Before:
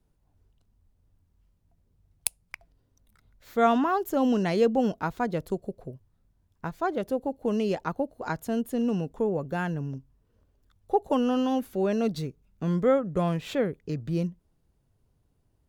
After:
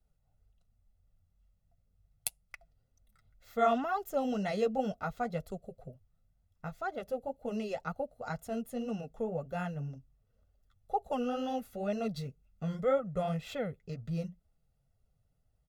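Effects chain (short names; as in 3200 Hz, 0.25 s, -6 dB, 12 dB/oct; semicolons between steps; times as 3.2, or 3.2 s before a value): comb 1.5 ms, depth 78%; flange 2 Hz, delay 2.3 ms, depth 6.8 ms, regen -31%; gain -5 dB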